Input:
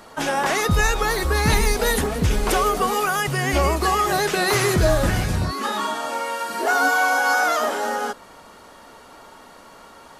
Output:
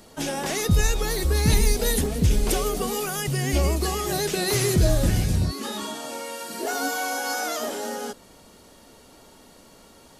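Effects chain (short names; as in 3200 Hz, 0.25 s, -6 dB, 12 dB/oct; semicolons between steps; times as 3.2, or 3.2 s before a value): bell 1200 Hz -14 dB 2.1 oct; gain +1 dB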